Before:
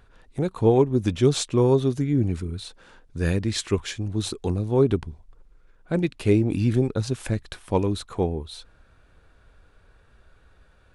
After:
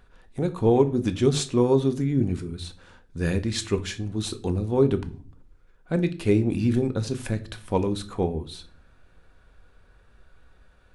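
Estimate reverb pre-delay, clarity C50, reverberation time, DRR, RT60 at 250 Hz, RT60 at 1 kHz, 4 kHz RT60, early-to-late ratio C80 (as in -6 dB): 4 ms, 17.0 dB, 0.40 s, 9.0 dB, 0.85 s, 0.30 s, 0.35 s, 21.5 dB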